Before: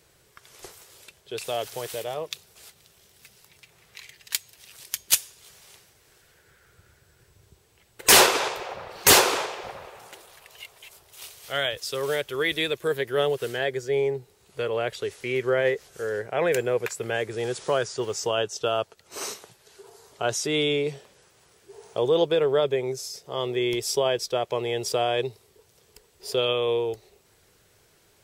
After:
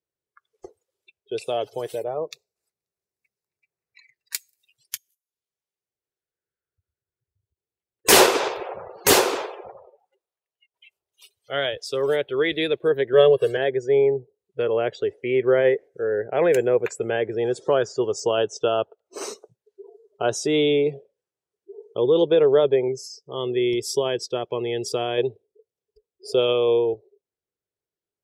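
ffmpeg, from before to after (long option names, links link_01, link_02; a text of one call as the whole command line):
ffmpeg -i in.wav -filter_complex "[0:a]asplit=3[link_01][link_02][link_03];[link_01]afade=type=out:start_time=1.96:duration=0.02[link_04];[link_02]equalizer=frequency=3200:width_type=o:width=0.3:gain=-13.5,afade=type=in:start_time=1.96:duration=0.02,afade=type=out:start_time=4.35:duration=0.02[link_05];[link_03]afade=type=in:start_time=4.35:duration=0.02[link_06];[link_04][link_05][link_06]amix=inputs=3:normalize=0,asettb=1/sr,asplit=3[link_07][link_08][link_09];[link_07]atrim=end=4.974[link_10];[link_08]atrim=start=4.97:end=8.05,asetpts=PTS-STARTPTS,afade=type=in:duration=0.004:curve=qsin,afade=type=out:start_time=3.076:duration=0.004:curve=qsin,acompressor=threshold=-57dB:ratio=8:attack=3.2:release=140:knee=1:detection=peak[link_11];[link_09]atrim=start=8.046[link_12];[link_10][link_11]acrossfade=duration=0.004:curve1=hsin:curve2=qsin[link_13];[link_13][link_12]acrossfade=duration=0.004:curve1=qsin:curve2=hsin,asettb=1/sr,asplit=3[link_14][link_15][link_16];[link_14]atrim=end=13.134[link_17];[link_15]atrim=start=13.13:end=13.57,asetpts=PTS-STARTPTS,afade=type=in:duration=0.004:curve=qsin,afade=type=out:start_time=0.436:duration=0.004:curve=qsin,aecho=1:1:1.8:0.98,atrim=end_sample=19404[link_18];[link_16]atrim=start=13.566[link_19];[link_17][link_18]acrossfade=duration=0.004:curve1=hsin:curve2=qsin[link_20];[link_20][link_19]acrossfade=duration=0.004:curve1=qsin:curve2=hsin,asettb=1/sr,asplit=3[link_21][link_22][link_23];[link_21]atrim=end=21.824[link_24];[link_22]atrim=start=21.82:end=22.27,asetpts=PTS-STARTPTS,afade=type=in:duration=0.004:curve=qsin,afade=type=out:start_time=0.446:duration=0.004:curve=qsin,equalizer=frequency=690:width=2.5:gain=-9.5[link_25];[link_23]atrim=start=22.266[link_26];[link_24][link_25]acrossfade=duration=0.004:curve1=hsin:curve2=qsin[link_27];[link_27][link_26]acrossfade=duration=0.004:curve1=qsin:curve2=hsin,asettb=1/sr,asplit=3[link_28][link_29][link_30];[link_28]atrim=end=22.884[link_31];[link_29]atrim=start=22.88:end=25.18,asetpts=PTS-STARTPTS,afade=type=in:duration=0.004:curve=qsin,afade=type=out:start_time=2.296:duration=0.004:curve=qsin,equalizer=frequency=630:width=1.3:gain=-7[link_32];[link_30]atrim=start=25.176[link_33];[link_31][link_32]acrossfade=duration=0.004:curve1=hsin:curve2=qsin[link_34];[link_34][link_33]acrossfade=duration=0.004:curve1=qsin:curve2=hsin,asplit=2[link_35][link_36];[link_35]atrim=end=10.74,asetpts=PTS-STARTPTS,afade=type=out:start_time=8.57:duration=2.17:silence=0.188365[link_37];[link_36]atrim=start=10.74,asetpts=PTS-STARTPTS,afade=type=in:duration=0.004:curve=hsin:silence=0.188365[link_38];[link_37][link_38]concat=n=2:v=0:a=1,afftdn=noise_reduction=35:noise_floor=-41,equalizer=frequency=360:width_type=o:width=2:gain=7.5,volume=-1dB" out.wav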